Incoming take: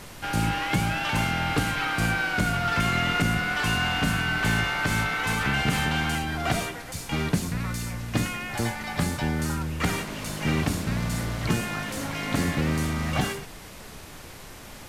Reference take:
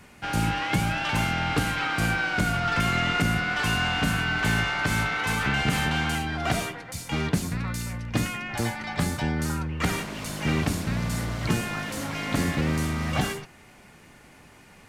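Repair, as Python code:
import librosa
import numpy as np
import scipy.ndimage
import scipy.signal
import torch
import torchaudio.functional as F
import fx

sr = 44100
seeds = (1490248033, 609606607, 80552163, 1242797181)

y = fx.noise_reduce(x, sr, print_start_s=14.21, print_end_s=14.71, reduce_db=9.0)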